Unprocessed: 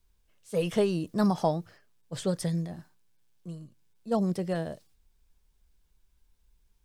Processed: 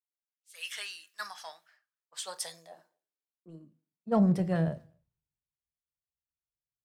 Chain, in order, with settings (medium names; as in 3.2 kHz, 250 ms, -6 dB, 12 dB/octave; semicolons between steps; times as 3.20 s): dynamic bell 310 Hz, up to -6 dB, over -40 dBFS, Q 0.73; speakerphone echo 250 ms, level -27 dB; high-pass sweep 1.7 kHz -> 120 Hz, 1.64–4.44 s; in parallel at -8.5 dB: saturation -33.5 dBFS, distortion -7 dB; on the sum: reverberation RT60 0.40 s, pre-delay 7 ms, DRR 11.5 dB; three bands expanded up and down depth 100%; trim -7 dB